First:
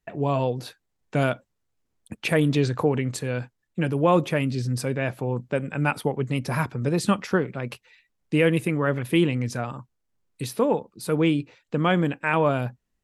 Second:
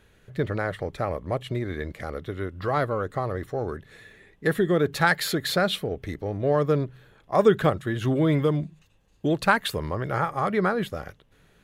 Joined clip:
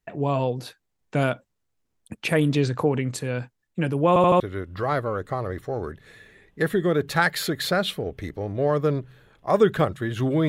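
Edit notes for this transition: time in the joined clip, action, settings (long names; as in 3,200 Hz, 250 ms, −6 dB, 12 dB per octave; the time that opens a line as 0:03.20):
first
0:04.08: stutter in place 0.08 s, 4 plays
0:04.40: continue with second from 0:02.25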